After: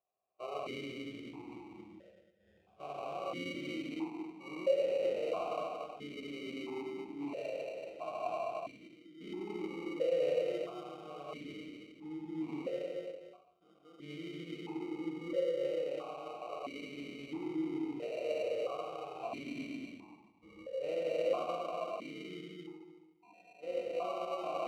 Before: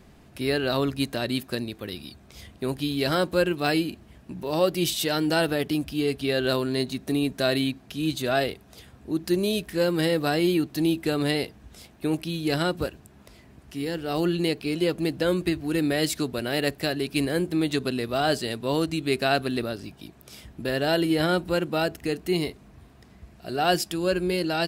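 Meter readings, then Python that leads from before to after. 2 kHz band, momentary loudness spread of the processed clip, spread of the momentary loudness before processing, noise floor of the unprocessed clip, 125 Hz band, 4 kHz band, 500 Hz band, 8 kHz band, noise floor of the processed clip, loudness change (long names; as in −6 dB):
−18.5 dB, 15 LU, 10 LU, −53 dBFS, −24.0 dB, −20.5 dB, −10.0 dB, below −20 dB, −67 dBFS, −13.0 dB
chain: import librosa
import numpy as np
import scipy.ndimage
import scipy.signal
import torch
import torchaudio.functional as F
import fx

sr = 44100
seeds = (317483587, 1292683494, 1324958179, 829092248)

p1 = fx.spec_steps(x, sr, hold_ms=400)
p2 = np.clip(p1, -10.0 ** (-25.0 / 20.0), 10.0 ** (-25.0 / 20.0))
p3 = p1 + (p2 * librosa.db_to_amplitude(-9.0))
p4 = fx.noise_reduce_blind(p3, sr, reduce_db=25)
p5 = fx.fixed_phaser(p4, sr, hz=1300.0, stages=8)
p6 = fx.echo_multitap(p5, sr, ms=(230, 508), db=(-3.5, -14.0))
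p7 = fx.rev_schroeder(p6, sr, rt60_s=0.98, comb_ms=28, drr_db=-0.5)
p8 = fx.sample_hold(p7, sr, seeds[0], rate_hz=1700.0, jitter_pct=0)
p9 = fx.peak_eq(p8, sr, hz=1600.0, db=-6.5, octaves=0.97)
y = fx.vowel_held(p9, sr, hz=1.5)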